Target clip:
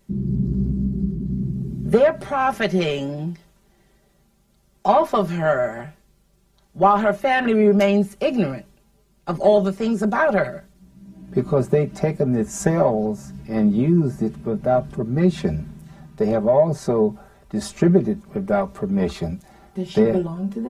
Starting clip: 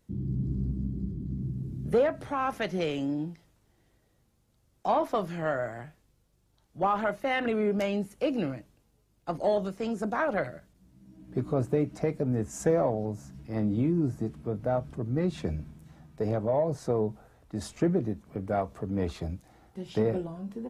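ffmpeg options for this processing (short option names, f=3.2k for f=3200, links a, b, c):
-af "aecho=1:1:5.1:0.78,volume=7.5dB"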